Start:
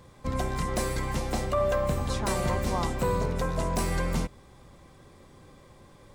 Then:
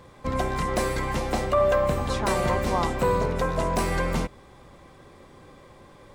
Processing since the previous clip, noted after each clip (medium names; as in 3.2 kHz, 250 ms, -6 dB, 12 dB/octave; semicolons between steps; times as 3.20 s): tone controls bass -5 dB, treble -6 dB; trim +5.5 dB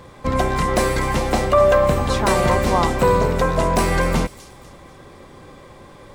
feedback echo behind a high-pass 245 ms, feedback 38%, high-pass 4.3 kHz, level -10.5 dB; trim +7 dB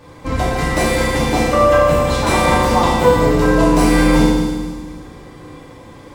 FDN reverb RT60 1.4 s, low-frequency decay 1.4×, high-frequency decay 1×, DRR -7.5 dB; trim -4.5 dB